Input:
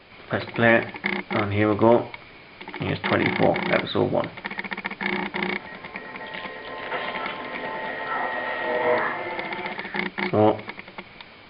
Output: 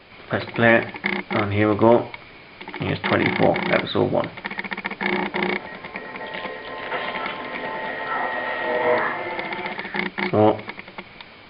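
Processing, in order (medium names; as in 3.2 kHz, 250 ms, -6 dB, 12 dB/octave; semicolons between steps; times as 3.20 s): 4.86–6.56 s: dynamic bell 510 Hz, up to +5 dB, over -41 dBFS, Q 1; trim +2 dB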